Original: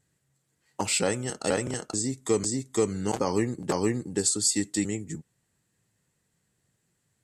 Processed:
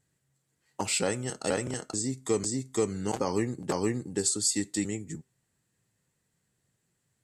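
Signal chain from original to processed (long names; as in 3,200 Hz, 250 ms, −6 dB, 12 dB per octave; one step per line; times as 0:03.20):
tuned comb filter 130 Hz, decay 0.3 s, harmonics all, mix 30%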